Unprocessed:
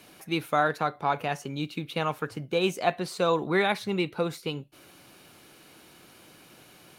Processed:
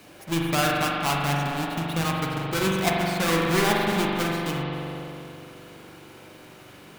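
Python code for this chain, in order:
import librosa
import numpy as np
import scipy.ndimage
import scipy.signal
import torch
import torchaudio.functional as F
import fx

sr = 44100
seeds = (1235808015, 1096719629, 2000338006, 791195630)

y = fx.halfwave_hold(x, sr)
y = fx.rev_spring(y, sr, rt60_s=2.7, pass_ms=(42,), chirp_ms=55, drr_db=-2.5)
y = fx.dynamic_eq(y, sr, hz=500.0, q=1.3, threshold_db=-32.0, ratio=4.0, max_db=-8)
y = F.gain(torch.from_numpy(y), -2.0).numpy()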